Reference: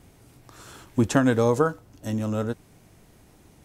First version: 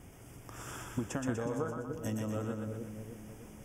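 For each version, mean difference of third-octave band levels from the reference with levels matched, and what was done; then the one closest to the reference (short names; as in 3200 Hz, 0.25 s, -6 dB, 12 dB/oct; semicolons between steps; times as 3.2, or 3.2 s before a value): 11.5 dB: compressor 10:1, threshold -33 dBFS, peak gain reduction 19 dB; Butterworth band-stop 4100 Hz, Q 2.6; on a send: split-band echo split 510 Hz, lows 0.307 s, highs 0.122 s, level -3 dB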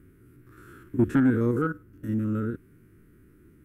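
6.5 dB: stepped spectrum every 50 ms; EQ curve 200 Hz 0 dB, 360 Hz +5 dB, 770 Hz -28 dB, 1400 Hz +2 dB, 3900 Hz -19 dB, 6600 Hz -21 dB, 12000 Hz -5 dB; soft clip -11.5 dBFS, distortion -21 dB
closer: second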